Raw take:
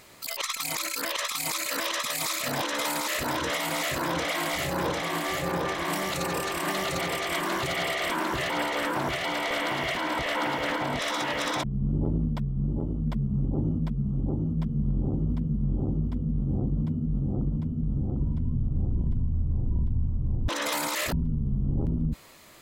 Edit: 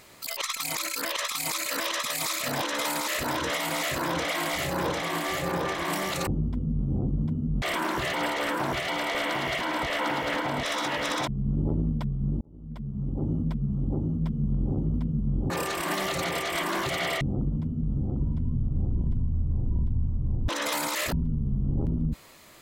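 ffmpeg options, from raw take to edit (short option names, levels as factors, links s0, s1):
-filter_complex "[0:a]asplit=6[s0][s1][s2][s3][s4][s5];[s0]atrim=end=6.272[s6];[s1]atrim=start=15.858:end=17.212[s7];[s2]atrim=start=7.978:end=12.77,asetpts=PTS-STARTPTS,afade=t=out:st=4.788:d=0.004:c=hsin[s8];[s3]atrim=start=12.77:end=15.862,asetpts=PTS-STARTPTS,afade=t=in:d=1[s9];[s4]atrim=start=6.268:end=7.982[s10];[s5]atrim=start=17.208[s11];[s6][s7]acrossfade=d=0.004:c1=hsin:c2=hsin[s12];[s8][s9]concat=n=2:v=0:a=1[s13];[s12][s13]acrossfade=d=0.004:c1=hsin:c2=hsin[s14];[s14][s10]acrossfade=d=0.004:c1=hsin:c2=hsin[s15];[s15][s11]acrossfade=d=0.004:c1=hsin:c2=hsin"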